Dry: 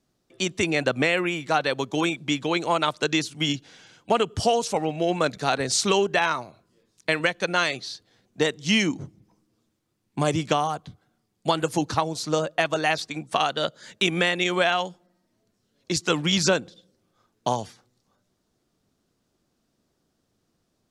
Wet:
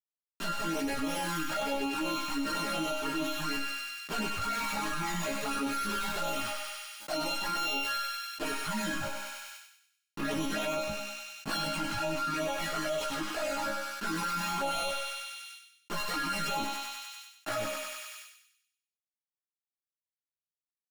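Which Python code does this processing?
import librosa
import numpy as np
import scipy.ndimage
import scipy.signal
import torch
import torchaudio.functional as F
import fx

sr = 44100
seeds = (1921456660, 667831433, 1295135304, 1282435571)

y = np.r_[np.sort(x[:len(x) // 32 * 32].reshape(-1, 32), axis=1).ravel(), x[len(x) // 32 * 32:]]
y = fx.high_shelf(y, sr, hz=3900.0, db=-10.5, at=(11.64, 14.04))
y = fx.fuzz(y, sr, gain_db=41.0, gate_db=-37.0)
y = fx.chorus_voices(y, sr, voices=2, hz=0.24, base_ms=15, depth_ms=3.7, mix_pct=65)
y = fx.resonator_bank(y, sr, root=56, chord='sus4', decay_s=0.36)
y = fx.env_flanger(y, sr, rest_ms=10.3, full_db=-31.0)
y = fx.doubler(y, sr, ms=18.0, db=-5.0)
y = fx.echo_thinned(y, sr, ms=97, feedback_pct=46, hz=980.0, wet_db=-6.0)
y = fx.env_flatten(y, sr, amount_pct=70)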